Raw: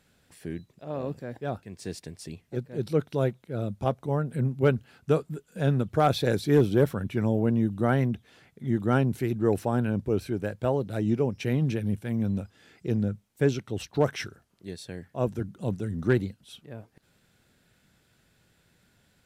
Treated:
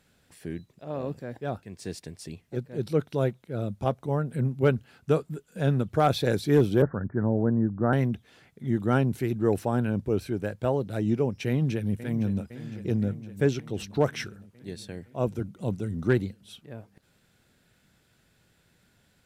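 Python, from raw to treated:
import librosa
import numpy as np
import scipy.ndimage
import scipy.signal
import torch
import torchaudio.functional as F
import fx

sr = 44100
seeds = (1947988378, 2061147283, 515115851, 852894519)

y = fx.steep_lowpass(x, sr, hz=1800.0, slope=96, at=(6.82, 7.93))
y = fx.echo_throw(y, sr, start_s=11.48, length_s=0.94, ms=510, feedback_pct=70, wet_db=-13.0)
y = fx.notch(y, sr, hz=1700.0, q=7.6, at=(14.92, 16.09))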